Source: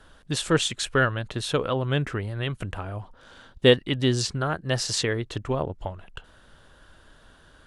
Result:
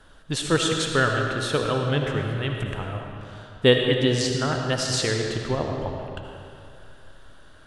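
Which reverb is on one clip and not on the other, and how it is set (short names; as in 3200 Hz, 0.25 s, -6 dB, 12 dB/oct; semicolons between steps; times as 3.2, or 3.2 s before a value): digital reverb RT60 2.5 s, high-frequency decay 0.8×, pre-delay 35 ms, DRR 2 dB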